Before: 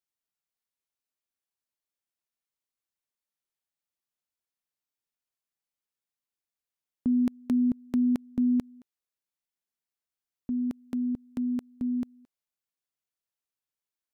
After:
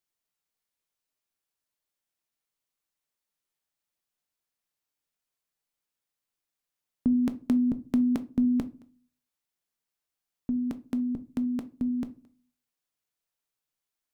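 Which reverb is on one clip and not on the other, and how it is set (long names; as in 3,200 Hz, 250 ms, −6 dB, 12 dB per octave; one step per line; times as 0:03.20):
rectangular room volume 190 cubic metres, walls furnished, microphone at 0.46 metres
level +3.5 dB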